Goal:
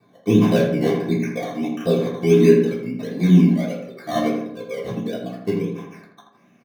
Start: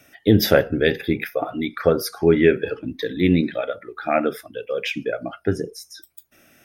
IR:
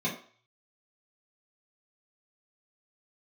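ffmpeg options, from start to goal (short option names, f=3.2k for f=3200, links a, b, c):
-filter_complex "[0:a]acrusher=samples=14:mix=1:aa=0.000001:lfo=1:lforange=8.4:lforate=1.5,asplit=2[a][b];[b]adelay=82,lowpass=f=1.8k:p=1,volume=-4.5dB,asplit=2[c][d];[d]adelay=82,lowpass=f=1.8k:p=1,volume=0.53,asplit=2[e][f];[f]adelay=82,lowpass=f=1.8k:p=1,volume=0.53,asplit=2[g][h];[h]adelay=82,lowpass=f=1.8k:p=1,volume=0.53,asplit=2[i][j];[j]adelay=82,lowpass=f=1.8k:p=1,volume=0.53,asplit=2[k][l];[l]adelay=82,lowpass=f=1.8k:p=1,volume=0.53,asplit=2[m][n];[n]adelay=82,lowpass=f=1.8k:p=1,volume=0.53[o];[a][c][e][g][i][k][m][o]amix=inputs=8:normalize=0[p];[1:a]atrim=start_sample=2205,atrim=end_sample=3969[q];[p][q]afir=irnorm=-1:irlink=0,volume=-13dB"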